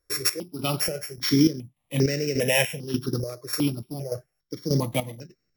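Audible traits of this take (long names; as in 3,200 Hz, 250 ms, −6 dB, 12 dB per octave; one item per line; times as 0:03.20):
a buzz of ramps at a fixed pitch in blocks of 8 samples
chopped level 1.7 Hz, depth 65%, duty 50%
notches that jump at a steady rate 2.5 Hz 820–3,300 Hz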